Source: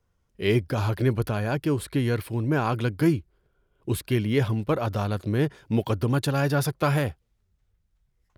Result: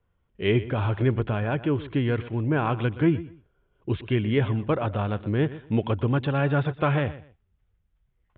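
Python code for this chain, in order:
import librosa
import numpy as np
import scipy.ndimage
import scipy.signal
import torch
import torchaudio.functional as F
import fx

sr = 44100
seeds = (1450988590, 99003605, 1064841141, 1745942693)

p1 = scipy.signal.sosfilt(scipy.signal.butter(12, 3500.0, 'lowpass', fs=sr, output='sos'), x)
y = p1 + fx.echo_feedback(p1, sr, ms=122, feedback_pct=22, wet_db=-16.0, dry=0)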